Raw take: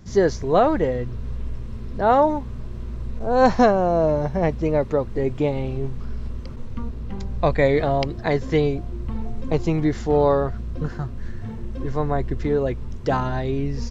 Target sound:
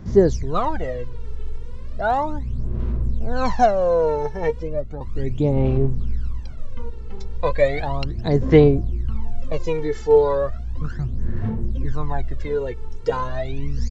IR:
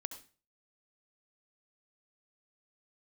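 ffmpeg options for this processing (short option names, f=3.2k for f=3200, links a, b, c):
-filter_complex "[0:a]asettb=1/sr,asplit=3[a][b][c];[a]atrim=end=4.504[d];[b]atrim=start=4.5:end=5.01,asetpts=PTS-STARTPTS,afade=t=in:d=0.004:c=qsin,afade=t=out:st=0.506:d=0.004:c=qsin,acrossover=split=400[e][f];[f]acompressor=threshold=-41dB:ratio=2.5[g];[e][g]amix=inputs=2:normalize=0[h];[c]atrim=start=5.006[i];[d][h]acrossfade=d=0.004:c1=hsin:c2=qsin[j];[j][i]acrossfade=d=0.004:c1=qsin:c2=hsin,aphaser=in_gain=1:out_gain=1:delay=2.3:decay=0.79:speed=0.35:type=sinusoidal,aresample=22050,aresample=44100,volume=-5.5dB"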